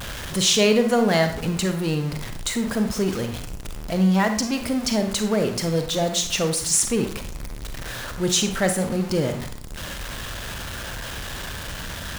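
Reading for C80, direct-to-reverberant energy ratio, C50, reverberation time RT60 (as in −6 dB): 13.0 dB, 6.5 dB, 9.0 dB, 0.55 s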